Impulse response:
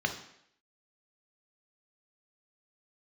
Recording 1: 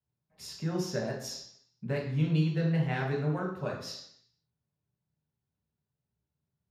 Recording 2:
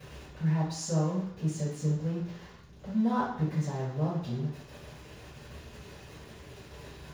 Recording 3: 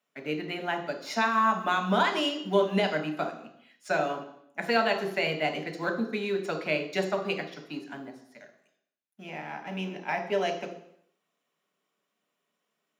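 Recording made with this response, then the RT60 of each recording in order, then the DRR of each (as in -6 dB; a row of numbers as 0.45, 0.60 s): 3; 0.70, 0.70, 0.70 s; -2.5, -12.0, 4.5 dB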